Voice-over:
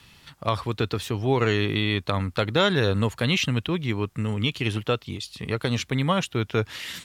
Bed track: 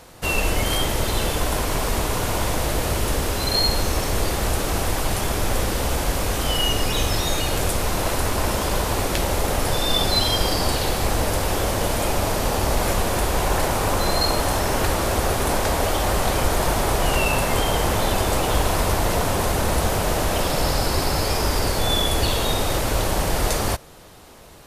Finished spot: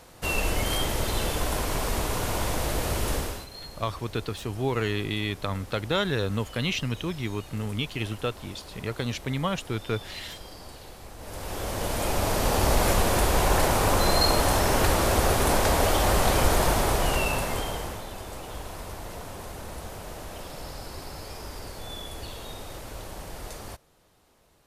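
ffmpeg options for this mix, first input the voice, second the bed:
-filter_complex "[0:a]adelay=3350,volume=-5dB[a];[1:a]volume=16.5dB,afade=t=out:st=3.15:d=0.32:silence=0.133352,afade=t=in:st=11.18:d=1.48:silence=0.0841395,afade=t=out:st=16.52:d=1.52:silence=0.149624[b];[a][b]amix=inputs=2:normalize=0"

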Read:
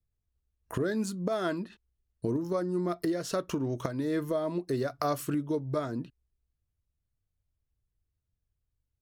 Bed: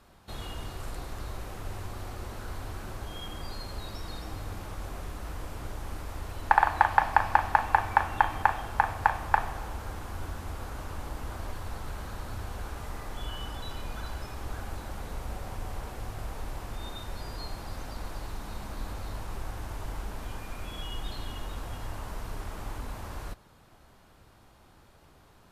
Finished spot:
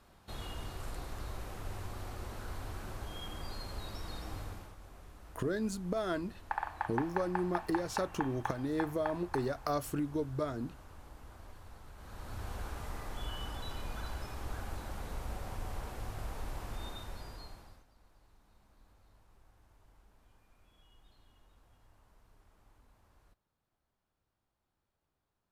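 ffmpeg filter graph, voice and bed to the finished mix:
-filter_complex "[0:a]adelay=4650,volume=-4dB[a];[1:a]volume=7.5dB,afade=t=out:st=4.39:d=0.36:silence=0.281838,afade=t=in:st=11.96:d=0.54:silence=0.266073,afade=t=out:st=16.79:d=1.06:silence=0.0630957[b];[a][b]amix=inputs=2:normalize=0"

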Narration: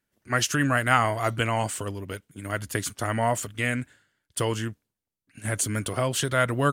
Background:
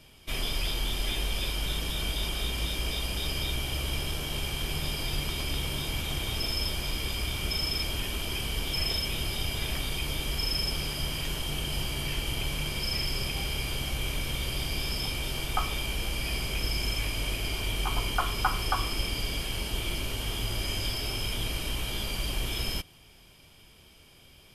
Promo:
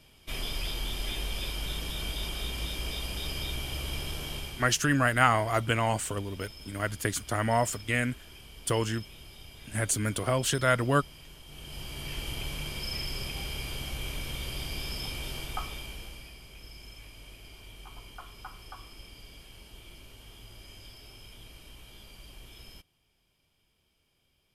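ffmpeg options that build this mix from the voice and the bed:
-filter_complex "[0:a]adelay=4300,volume=-1.5dB[a];[1:a]volume=9.5dB,afade=t=out:st=4.29:d=0.46:silence=0.199526,afade=t=in:st=11.46:d=0.77:silence=0.223872,afade=t=out:st=15.31:d=1.03:silence=0.211349[b];[a][b]amix=inputs=2:normalize=0"

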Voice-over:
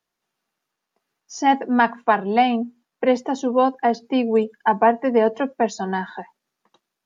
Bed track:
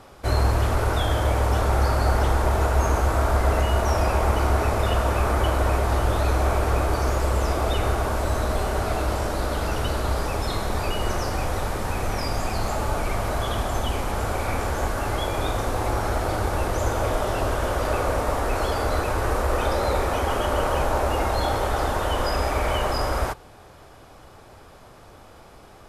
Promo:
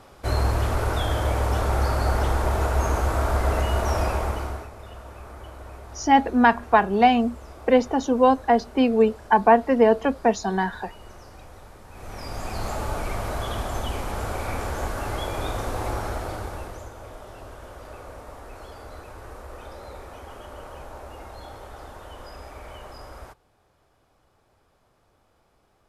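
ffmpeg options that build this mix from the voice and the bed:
-filter_complex "[0:a]adelay=4650,volume=0.5dB[a];[1:a]volume=14dB,afade=t=out:st=4.02:d=0.67:silence=0.133352,afade=t=in:st=11.9:d=0.77:silence=0.158489,afade=t=out:st=15.89:d=1.01:silence=0.199526[b];[a][b]amix=inputs=2:normalize=0"

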